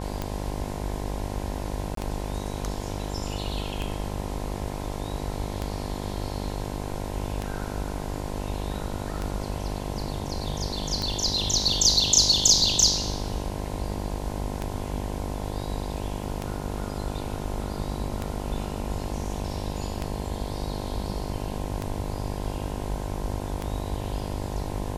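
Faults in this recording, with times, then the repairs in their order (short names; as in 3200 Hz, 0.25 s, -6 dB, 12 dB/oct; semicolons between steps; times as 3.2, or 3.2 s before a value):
buzz 50 Hz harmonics 21 -33 dBFS
tick 33 1/3 rpm -15 dBFS
1.95–1.97 gap 23 ms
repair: de-click; de-hum 50 Hz, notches 21; interpolate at 1.95, 23 ms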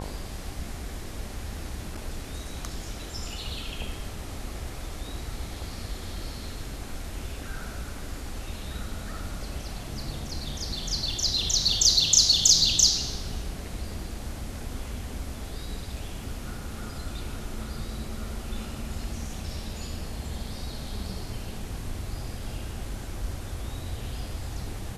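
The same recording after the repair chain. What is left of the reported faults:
none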